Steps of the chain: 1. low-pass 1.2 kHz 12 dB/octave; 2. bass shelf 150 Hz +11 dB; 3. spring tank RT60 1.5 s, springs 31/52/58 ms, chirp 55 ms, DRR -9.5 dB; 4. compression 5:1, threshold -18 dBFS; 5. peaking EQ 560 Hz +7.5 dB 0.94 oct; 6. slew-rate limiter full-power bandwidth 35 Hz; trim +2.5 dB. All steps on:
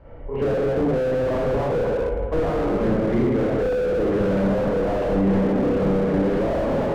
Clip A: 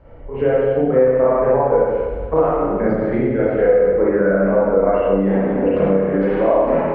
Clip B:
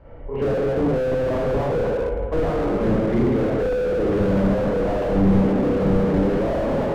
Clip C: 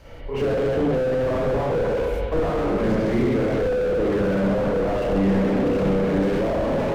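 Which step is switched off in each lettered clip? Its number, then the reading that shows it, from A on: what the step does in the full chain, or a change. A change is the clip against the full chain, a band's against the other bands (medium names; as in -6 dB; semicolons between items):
6, 125 Hz band -5.5 dB; 4, mean gain reduction 2.0 dB; 1, 4 kHz band +3.5 dB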